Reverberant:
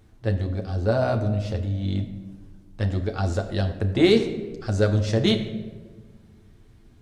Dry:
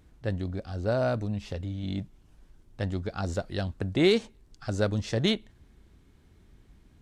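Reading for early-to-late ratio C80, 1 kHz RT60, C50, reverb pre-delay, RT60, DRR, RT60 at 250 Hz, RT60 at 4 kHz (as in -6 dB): 11.5 dB, 1.1 s, 10.0 dB, 9 ms, 1.4 s, 3.5 dB, 1.9 s, 0.80 s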